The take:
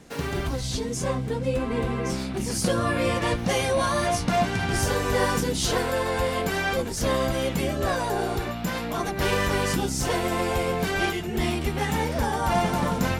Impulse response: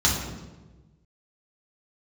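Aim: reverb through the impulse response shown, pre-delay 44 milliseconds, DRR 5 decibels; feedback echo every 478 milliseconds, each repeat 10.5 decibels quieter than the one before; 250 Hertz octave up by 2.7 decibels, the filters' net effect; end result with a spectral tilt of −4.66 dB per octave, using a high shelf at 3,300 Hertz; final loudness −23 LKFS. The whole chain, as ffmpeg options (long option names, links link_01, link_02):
-filter_complex "[0:a]equalizer=frequency=250:width_type=o:gain=3.5,highshelf=frequency=3300:gain=6.5,aecho=1:1:478|956|1434:0.299|0.0896|0.0269,asplit=2[link_01][link_02];[1:a]atrim=start_sample=2205,adelay=44[link_03];[link_02][link_03]afir=irnorm=-1:irlink=0,volume=-20dB[link_04];[link_01][link_04]amix=inputs=2:normalize=0,volume=-2.5dB"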